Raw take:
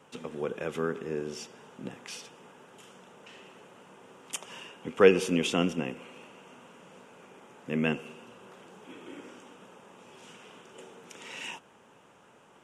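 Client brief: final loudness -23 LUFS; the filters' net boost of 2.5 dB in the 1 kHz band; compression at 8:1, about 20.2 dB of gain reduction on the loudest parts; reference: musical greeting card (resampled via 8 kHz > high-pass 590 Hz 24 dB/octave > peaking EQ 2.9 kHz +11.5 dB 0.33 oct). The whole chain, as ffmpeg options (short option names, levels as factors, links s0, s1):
-af "equalizer=f=1000:t=o:g=3.5,acompressor=threshold=0.02:ratio=8,aresample=8000,aresample=44100,highpass=f=590:w=0.5412,highpass=f=590:w=1.3066,equalizer=f=2900:t=o:w=0.33:g=11.5,volume=8.91"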